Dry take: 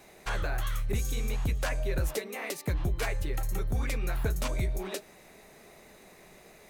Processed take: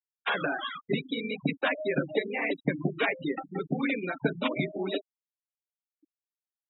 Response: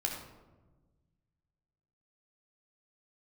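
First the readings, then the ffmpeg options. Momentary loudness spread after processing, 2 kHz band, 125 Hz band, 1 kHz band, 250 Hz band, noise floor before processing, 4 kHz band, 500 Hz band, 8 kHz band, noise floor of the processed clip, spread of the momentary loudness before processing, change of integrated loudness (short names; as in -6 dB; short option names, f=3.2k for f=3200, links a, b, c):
5 LU, +7.0 dB, -5.0 dB, +5.0 dB, +9.0 dB, -55 dBFS, +4.5 dB, +6.0 dB, under -40 dB, under -85 dBFS, 4 LU, +2.0 dB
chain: -filter_complex "[0:a]aemphasis=mode=production:type=75fm,acrossover=split=250|1300[a][b][c];[c]asoftclip=type=hard:threshold=-24.5dB[d];[a][b][d]amix=inputs=3:normalize=0,afftfilt=real='re*between(b*sr/4096,130,3900)':imag='im*between(b*sr/4096,130,3900)':win_size=4096:overlap=0.75,equalizer=f=280:w=7.5:g=12.5,afftfilt=real='re*gte(hypot(re,im),0.0251)':imag='im*gte(hypot(re,im),0.0251)':win_size=1024:overlap=0.75,volume=6.5dB"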